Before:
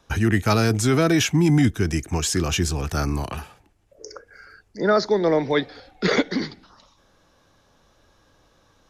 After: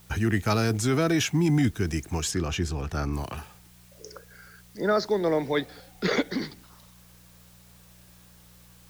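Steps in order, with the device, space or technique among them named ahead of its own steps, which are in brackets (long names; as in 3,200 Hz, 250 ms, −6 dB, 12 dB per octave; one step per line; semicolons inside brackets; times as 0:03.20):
video cassette with head-switching buzz (hum with harmonics 60 Hz, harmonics 3, −51 dBFS 0 dB per octave; white noise bed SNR 29 dB)
0:02.31–0:03.13: high-shelf EQ 5,600 Hz −11 dB
level −5 dB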